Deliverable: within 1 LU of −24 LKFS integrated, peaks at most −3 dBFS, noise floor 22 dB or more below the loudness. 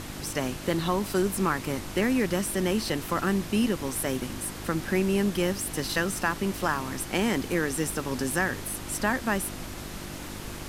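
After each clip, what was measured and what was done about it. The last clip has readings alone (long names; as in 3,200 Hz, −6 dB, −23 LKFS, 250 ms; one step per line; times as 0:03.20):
mains hum 50 Hz; hum harmonics up to 350 Hz; level of the hum −40 dBFS; background noise floor −38 dBFS; target noise floor −50 dBFS; integrated loudness −28.0 LKFS; sample peak −11.0 dBFS; target loudness −24.0 LKFS
→ hum removal 50 Hz, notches 7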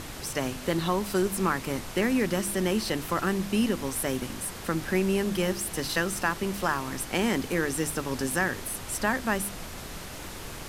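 mains hum none found; background noise floor −40 dBFS; target noise floor −51 dBFS
→ noise reduction from a noise print 11 dB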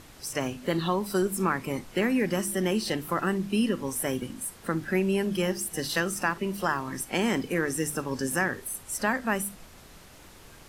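background noise floor −50 dBFS; target noise floor −51 dBFS
→ noise reduction from a noise print 6 dB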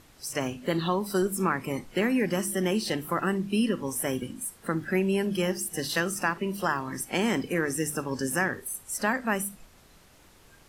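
background noise floor −56 dBFS; integrated loudness −28.5 LKFS; sample peak −11.0 dBFS; target loudness −24.0 LKFS
→ level +4.5 dB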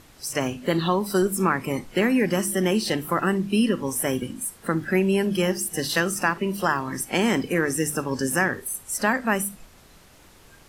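integrated loudness −24.0 LKFS; sample peak −6.5 dBFS; background noise floor −52 dBFS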